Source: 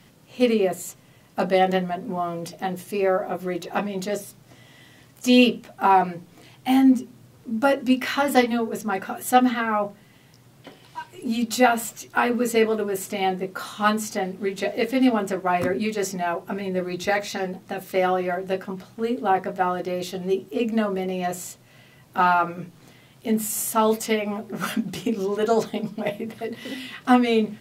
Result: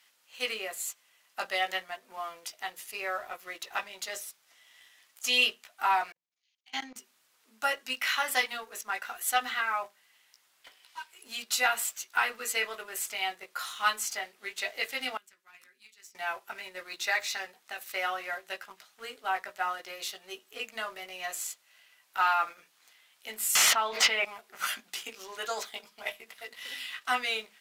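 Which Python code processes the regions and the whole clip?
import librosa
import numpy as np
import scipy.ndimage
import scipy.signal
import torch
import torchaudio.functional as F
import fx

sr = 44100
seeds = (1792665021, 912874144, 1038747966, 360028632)

y = fx.chain(x, sr, fx.level_steps(step_db=17),
    fx.brickwall_lowpass(high_hz=7000.0),
    fx.band_widen(depth_pct=100), at=(6.12, 6.96))
y = fx.chain(y, sr, fx.tone_stack(knobs='6-0-2'),
    fx.band_squash(depth_pct=40), at=(15.17, 16.15))
y = fx.chain(y, sr, fx.air_absorb(metres=240.0),
    fx.env_flatten(amount_pct=100), at=(23.55, 24.25))
y = scipy.signal.sosfilt(scipy.signal.butter(2, 1400.0, 'highpass', fs=sr, output='sos'), y)
y = fx.leveller(y, sr, passes=1)
y = y * 10.0 ** (-4.0 / 20.0)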